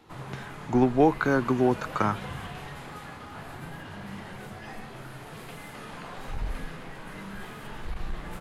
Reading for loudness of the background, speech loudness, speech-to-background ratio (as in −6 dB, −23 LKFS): −40.5 LKFS, −25.0 LKFS, 15.5 dB